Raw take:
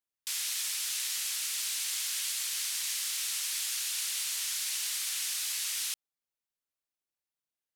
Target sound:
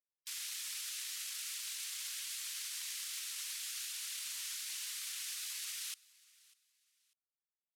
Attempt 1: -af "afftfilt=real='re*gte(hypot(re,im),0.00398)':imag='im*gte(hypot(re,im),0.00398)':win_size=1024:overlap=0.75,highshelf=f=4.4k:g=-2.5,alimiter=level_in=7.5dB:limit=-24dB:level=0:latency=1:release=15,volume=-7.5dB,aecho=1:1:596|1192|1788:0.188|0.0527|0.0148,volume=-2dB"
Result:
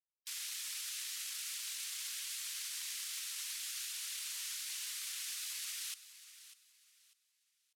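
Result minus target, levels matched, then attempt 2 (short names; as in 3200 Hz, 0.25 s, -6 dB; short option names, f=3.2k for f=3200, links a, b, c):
echo-to-direct +9 dB
-af "afftfilt=real='re*gte(hypot(re,im),0.00398)':imag='im*gte(hypot(re,im),0.00398)':win_size=1024:overlap=0.75,highshelf=f=4.4k:g=-2.5,alimiter=level_in=7.5dB:limit=-24dB:level=0:latency=1:release=15,volume=-7.5dB,aecho=1:1:596|1192:0.0668|0.0187,volume=-2dB"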